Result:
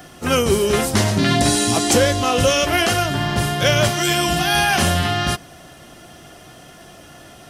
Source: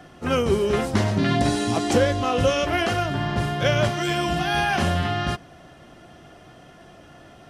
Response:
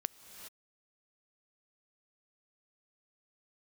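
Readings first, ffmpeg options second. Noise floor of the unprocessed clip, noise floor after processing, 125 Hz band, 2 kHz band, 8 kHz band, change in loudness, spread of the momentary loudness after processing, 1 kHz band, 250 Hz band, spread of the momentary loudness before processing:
-48 dBFS, -43 dBFS, +3.5 dB, +6.0 dB, +14.0 dB, +5.0 dB, 5 LU, +4.0 dB, +3.5 dB, 4 LU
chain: -af "aemphasis=mode=production:type=75kf,apsyclip=3.55,volume=0.422"

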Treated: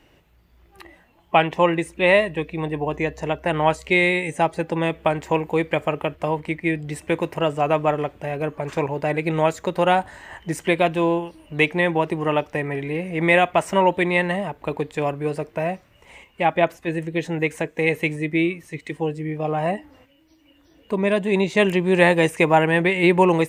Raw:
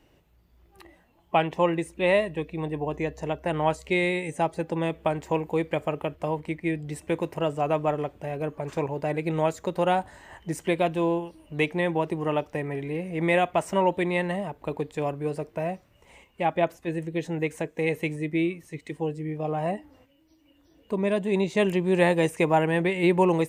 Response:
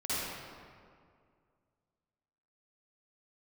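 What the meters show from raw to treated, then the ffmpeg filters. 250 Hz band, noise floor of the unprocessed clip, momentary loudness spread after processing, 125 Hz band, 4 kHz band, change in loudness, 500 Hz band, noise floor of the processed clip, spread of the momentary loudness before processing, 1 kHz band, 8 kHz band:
+4.0 dB, -62 dBFS, 10 LU, +4.0 dB, +7.5 dB, +5.5 dB, +4.5 dB, -57 dBFS, 9 LU, +6.0 dB, +4.5 dB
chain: -af "equalizer=f=2000:w=0.68:g=5,volume=1.58"

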